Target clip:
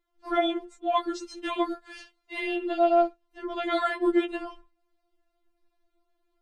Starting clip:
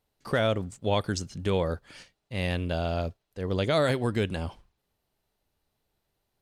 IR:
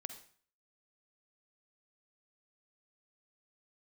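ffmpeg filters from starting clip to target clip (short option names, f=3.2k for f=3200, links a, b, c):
-af "asetnsamples=n=441:p=0,asendcmd='1.22 lowpass f 3300;2.4 lowpass f 1300',lowpass=f=1.1k:p=1,afftfilt=real='re*4*eq(mod(b,16),0)':imag='im*4*eq(mod(b,16),0)':win_size=2048:overlap=0.75,volume=8dB"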